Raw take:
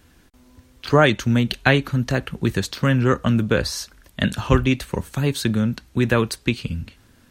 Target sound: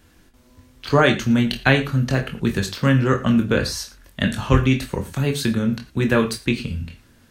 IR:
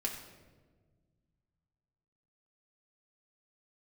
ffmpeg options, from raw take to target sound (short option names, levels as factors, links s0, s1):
-filter_complex "[0:a]asplit=2[s0][s1];[1:a]atrim=start_sample=2205,atrim=end_sample=4410,adelay=22[s2];[s1][s2]afir=irnorm=-1:irlink=0,volume=0.501[s3];[s0][s3]amix=inputs=2:normalize=0,volume=0.891"